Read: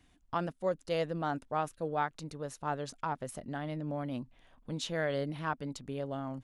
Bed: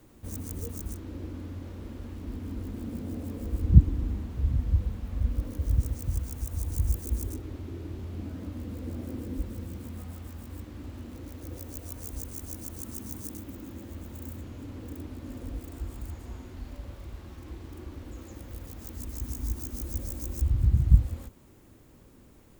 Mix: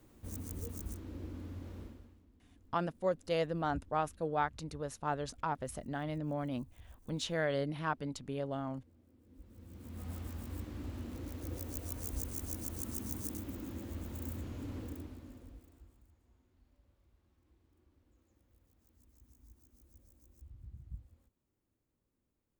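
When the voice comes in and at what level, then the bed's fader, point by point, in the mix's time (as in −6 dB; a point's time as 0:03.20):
2.40 s, −0.5 dB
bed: 0:01.81 −6 dB
0:02.31 −29.5 dB
0:09.19 −29.5 dB
0:10.11 −1.5 dB
0:14.79 −1.5 dB
0:16.12 −28.5 dB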